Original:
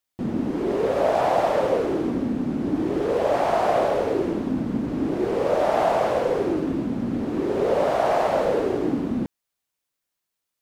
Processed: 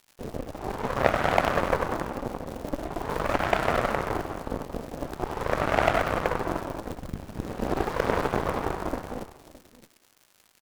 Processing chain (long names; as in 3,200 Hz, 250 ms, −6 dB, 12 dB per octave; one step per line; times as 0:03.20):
reverb reduction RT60 0.69 s
surface crackle 550 per second −32 dBFS
single-tap delay 615 ms −11 dB
0:06.91–0:08.46: frequency shifter −190 Hz
delay with a band-pass on its return 95 ms, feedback 63%, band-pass 940 Hz, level −4 dB
harmonic generator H 3 −10 dB, 6 −23 dB, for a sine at −7 dBFS
level +5.5 dB